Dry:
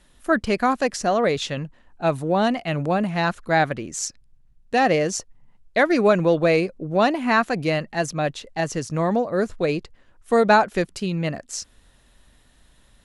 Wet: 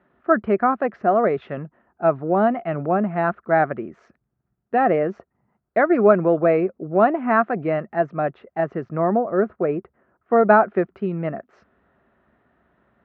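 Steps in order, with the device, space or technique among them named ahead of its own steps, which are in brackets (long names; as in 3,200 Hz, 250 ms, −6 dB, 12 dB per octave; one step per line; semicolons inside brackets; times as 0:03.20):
0:09.53–0:10.33: Bessel low-pass filter 2,300 Hz
bass cabinet (loudspeaker in its box 76–2,000 Hz, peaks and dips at 98 Hz −8 dB, 210 Hz +5 dB, 380 Hz +9 dB, 680 Hz +8 dB, 1,300 Hz +8 dB)
level −3.5 dB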